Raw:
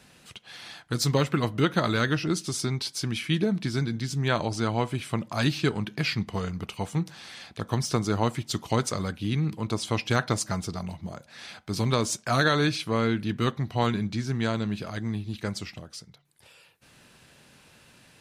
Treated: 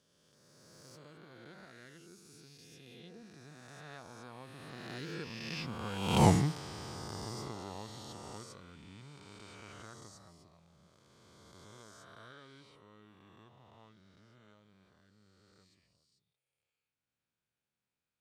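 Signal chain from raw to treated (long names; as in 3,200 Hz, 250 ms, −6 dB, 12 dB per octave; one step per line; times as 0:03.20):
peak hold with a rise ahead of every peak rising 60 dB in 2.93 s
source passing by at 0:06.25, 27 m/s, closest 1.6 metres
level +4 dB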